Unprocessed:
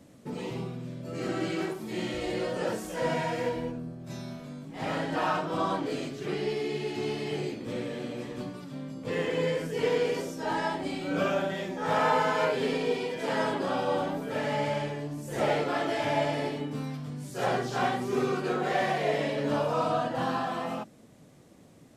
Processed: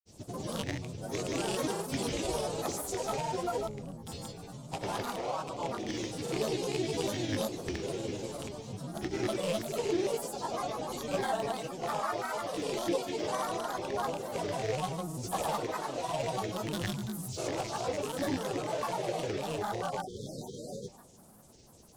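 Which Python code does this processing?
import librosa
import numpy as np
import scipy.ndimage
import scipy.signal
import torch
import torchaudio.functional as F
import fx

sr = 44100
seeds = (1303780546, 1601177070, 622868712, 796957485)

p1 = fx.rattle_buzz(x, sr, strikes_db=-33.0, level_db=-21.0)
p2 = fx.graphic_eq(p1, sr, hz=(125, 250, 1000, 2000, 8000), db=(-4, -12, 8, -7, 7))
p3 = fx.rider(p2, sr, range_db=5, speed_s=0.5)
p4 = p3 + fx.echo_multitap(p3, sr, ms=(68, 179), db=(-6.5, -19.5), dry=0)
p5 = fx.spec_erase(p4, sr, start_s=20.0, length_s=0.92, low_hz=660.0, high_hz=4100.0)
p6 = fx.peak_eq(p5, sr, hz=1400.0, db=-12.5, octaves=2.5)
p7 = fx.granulator(p6, sr, seeds[0], grain_ms=100.0, per_s=20.0, spray_ms=100.0, spread_st=7)
y = p7 * 10.0 ** (2.5 / 20.0)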